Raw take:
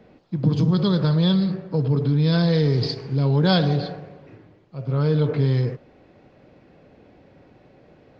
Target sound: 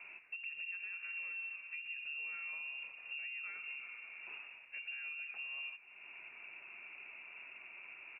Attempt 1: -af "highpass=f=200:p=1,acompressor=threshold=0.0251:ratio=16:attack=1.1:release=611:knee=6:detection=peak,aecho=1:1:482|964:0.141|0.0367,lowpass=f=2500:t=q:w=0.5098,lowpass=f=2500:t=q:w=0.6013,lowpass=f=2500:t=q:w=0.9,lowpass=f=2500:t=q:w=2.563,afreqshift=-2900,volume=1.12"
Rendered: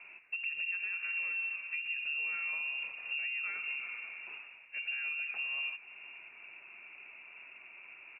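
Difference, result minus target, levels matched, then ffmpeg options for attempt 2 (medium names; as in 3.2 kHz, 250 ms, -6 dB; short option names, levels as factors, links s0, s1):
compression: peak gain reduction -7.5 dB
-af "highpass=f=200:p=1,acompressor=threshold=0.01:ratio=16:attack=1.1:release=611:knee=6:detection=peak,aecho=1:1:482|964:0.141|0.0367,lowpass=f=2500:t=q:w=0.5098,lowpass=f=2500:t=q:w=0.6013,lowpass=f=2500:t=q:w=0.9,lowpass=f=2500:t=q:w=2.563,afreqshift=-2900,volume=1.12"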